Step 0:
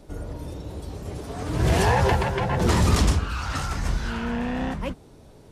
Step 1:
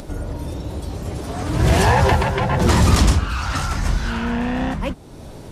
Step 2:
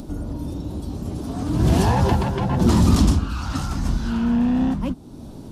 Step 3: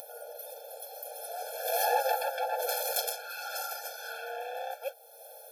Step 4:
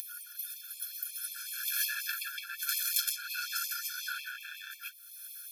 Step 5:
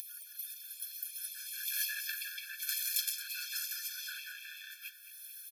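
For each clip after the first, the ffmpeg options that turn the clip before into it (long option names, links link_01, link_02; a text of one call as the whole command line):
ffmpeg -i in.wav -filter_complex "[0:a]equalizer=frequency=440:width_type=o:width=0.25:gain=-4.5,asplit=2[link_01][link_02];[link_02]acompressor=mode=upward:threshold=-24dB:ratio=2.5,volume=-1.5dB[link_03];[link_01][link_03]amix=inputs=2:normalize=0" out.wav
ffmpeg -i in.wav -af "equalizer=frequency=250:width_type=o:width=1:gain=9,equalizer=frequency=500:width_type=o:width=1:gain=-5,equalizer=frequency=2000:width_type=o:width=1:gain=-10,equalizer=frequency=8000:width_type=o:width=1:gain=-3,volume=-3dB" out.wav
ffmpeg -i in.wav -af "asoftclip=type=tanh:threshold=-11.5dB,aexciter=amount=11.9:drive=3:freq=11000,afftfilt=real='re*eq(mod(floor(b*sr/1024/450),2),1)':imag='im*eq(mod(floor(b*sr/1024/450),2),1)':win_size=1024:overlap=0.75" out.wav
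ffmpeg -i in.wav -filter_complex "[0:a]asplit=2[link_01][link_02];[link_02]acompressor=threshold=-39dB:ratio=10,volume=1dB[link_03];[link_01][link_03]amix=inputs=2:normalize=0,afftfilt=real='re*gte(b*sr/1024,930*pow(2000/930,0.5+0.5*sin(2*PI*5.5*pts/sr)))':imag='im*gte(b*sr/1024,930*pow(2000/930,0.5+0.5*sin(2*PI*5.5*pts/sr)))':win_size=1024:overlap=0.75" out.wav
ffmpeg -i in.wav -af "asuperstop=centerf=1000:order=12:qfactor=1.1,aecho=1:1:221|442|663|884|1105|1326:0.224|0.132|0.0779|0.046|0.0271|0.016,volume=-3dB" out.wav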